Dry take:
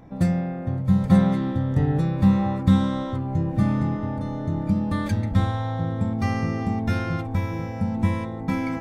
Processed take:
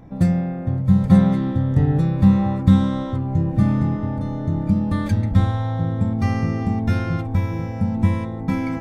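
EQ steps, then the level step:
low-shelf EQ 260 Hz +5.5 dB
0.0 dB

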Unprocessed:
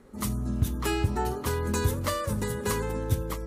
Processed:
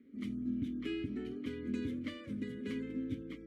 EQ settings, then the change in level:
formant filter i
high-shelf EQ 3,000 Hz −9.5 dB
+4.5 dB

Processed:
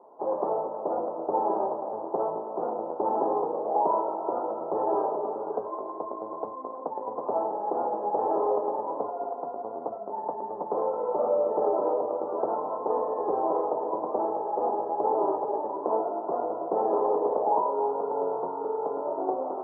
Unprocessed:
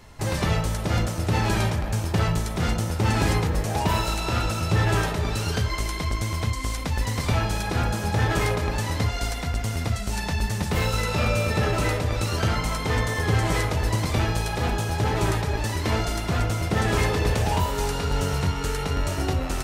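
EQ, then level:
high-pass filter 400 Hz 24 dB per octave
Butterworth low-pass 990 Hz 48 dB per octave
high-frequency loss of the air 280 metres
+5.5 dB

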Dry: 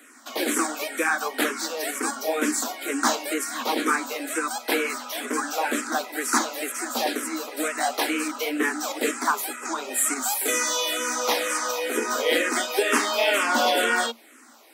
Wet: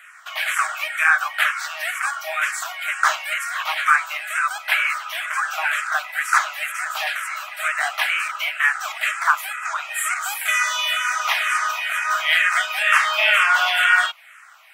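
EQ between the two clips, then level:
linear-phase brick-wall high-pass 600 Hz
flat-topped bell 1,900 Hz +13 dB
−4.0 dB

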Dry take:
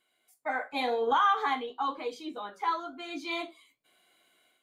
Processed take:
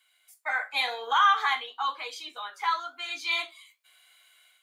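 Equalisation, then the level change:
high-pass filter 1,400 Hz 12 dB per octave
+8.5 dB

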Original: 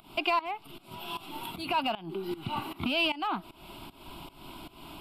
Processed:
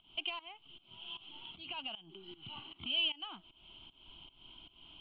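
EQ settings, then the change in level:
transistor ladder low-pass 3,200 Hz, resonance 90%
low-shelf EQ 100 Hz +10.5 dB
−7.0 dB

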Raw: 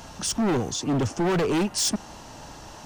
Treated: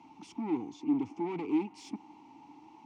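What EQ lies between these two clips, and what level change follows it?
formant filter u
high-pass filter 74 Hz
0.0 dB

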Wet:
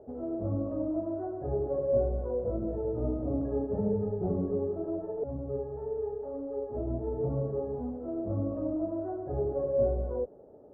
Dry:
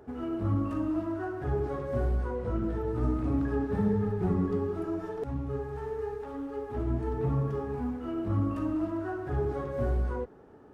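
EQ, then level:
low-pass with resonance 590 Hz, resonance Q 5.2
−5.0 dB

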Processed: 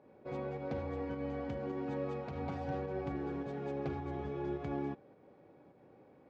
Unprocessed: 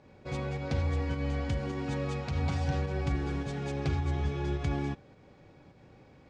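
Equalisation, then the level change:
resonant band-pass 380 Hz, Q 0.74
low-shelf EQ 320 Hz −7.5 dB
+2.0 dB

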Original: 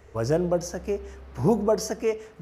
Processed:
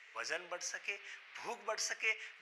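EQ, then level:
dynamic equaliser 4,100 Hz, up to −4 dB, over −46 dBFS, Q 1.2
four-pole ladder band-pass 2,700 Hz, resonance 45%
+15.0 dB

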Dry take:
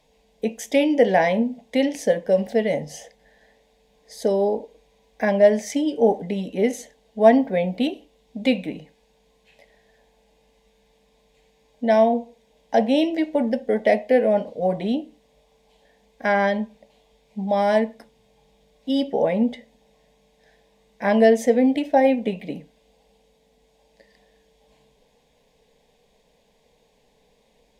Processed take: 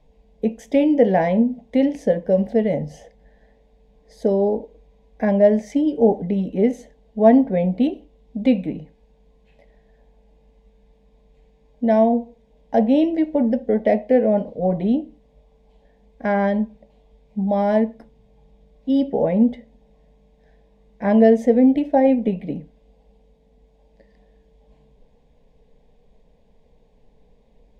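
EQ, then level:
spectral tilt −3.5 dB per octave
−2.5 dB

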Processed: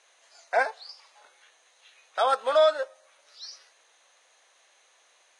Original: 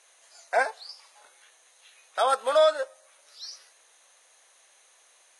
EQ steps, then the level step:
band-pass filter 190–5,900 Hz
0.0 dB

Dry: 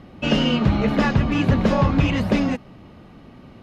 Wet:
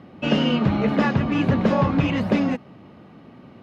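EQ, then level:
high-pass filter 120 Hz 12 dB per octave
high-shelf EQ 4,600 Hz −10 dB
0.0 dB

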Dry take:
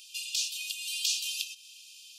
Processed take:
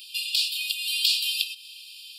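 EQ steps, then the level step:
parametric band 4,800 Hz +9 dB 0.78 octaves
high-shelf EQ 9,300 Hz +5 dB
phaser with its sweep stopped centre 2,700 Hz, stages 4
+6.0 dB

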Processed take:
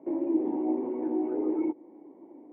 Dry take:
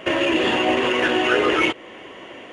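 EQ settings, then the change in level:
formant resonators in series u
high-pass filter 210 Hz 12 dB per octave
high-frequency loss of the air 58 metres
0.0 dB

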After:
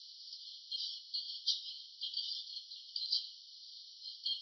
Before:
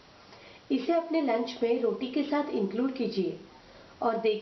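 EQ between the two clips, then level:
Chebyshev high-pass filter 3,000 Hz, order 10
low-pass with resonance 4,700 Hz, resonance Q 4.2
0.0 dB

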